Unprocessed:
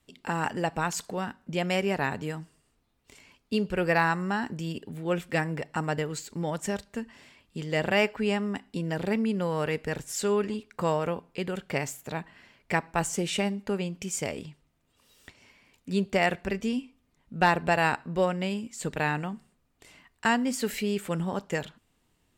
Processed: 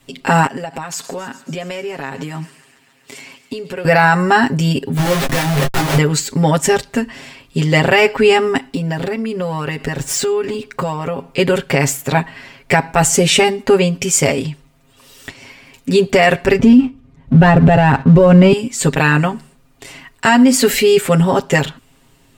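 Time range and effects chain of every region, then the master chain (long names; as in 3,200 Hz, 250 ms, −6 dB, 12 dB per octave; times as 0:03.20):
0:00.46–0:03.85: high-pass filter 160 Hz + downward compressor 20 to 1, threshold −39 dBFS + delay with a high-pass on its return 138 ms, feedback 78%, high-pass 1,900 Hz, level −16 dB
0:04.97–0:05.98: comparator with hysteresis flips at −43.5 dBFS + micro pitch shift up and down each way 34 cents
0:08.67–0:11.28: running median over 3 samples + downward compressor 10 to 1, threshold −33 dBFS
0:16.59–0:18.53: high-pass filter 49 Hz + RIAA equalisation playback + leveller curve on the samples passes 1
whole clip: comb filter 7.4 ms, depth 89%; boost into a limiter +17 dB; level −1 dB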